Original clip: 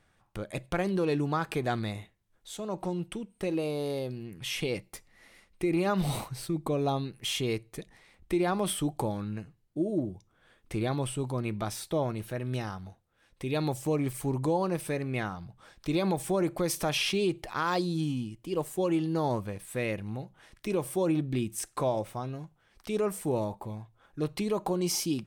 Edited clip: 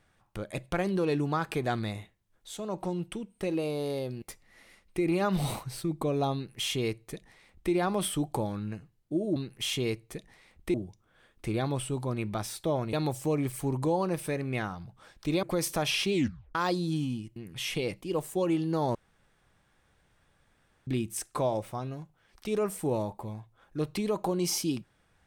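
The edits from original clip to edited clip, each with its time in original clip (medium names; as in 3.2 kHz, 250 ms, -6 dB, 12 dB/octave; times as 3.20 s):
4.22–4.87 s: move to 18.43 s
6.99–8.37 s: copy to 10.01 s
12.20–13.54 s: delete
16.04–16.50 s: delete
17.19 s: tape stop 0.43 s
19.37–21.29 s: room tone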